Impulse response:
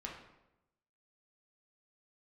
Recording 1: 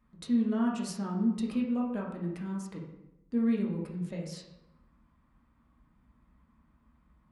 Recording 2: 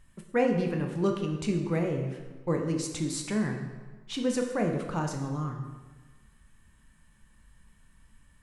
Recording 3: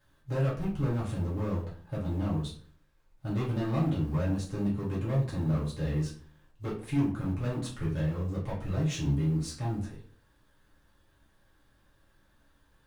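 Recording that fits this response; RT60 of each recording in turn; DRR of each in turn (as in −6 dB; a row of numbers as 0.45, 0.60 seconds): 1; 0.90, 1.3, 0.45 seconds; −2.0, 2.5, −7.5 decibels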